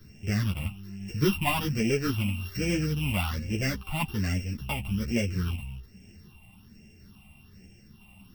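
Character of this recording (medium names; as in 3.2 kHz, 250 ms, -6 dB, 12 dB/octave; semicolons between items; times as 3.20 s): a buzz of ramps at a fixed pitch in blocks of 16 samples; phasing stages 6, 1.2 Hz, lowest notch 420–1100 Hz; tremolo saw down 1 Hz, depth 30%; a shimmering, thickened sound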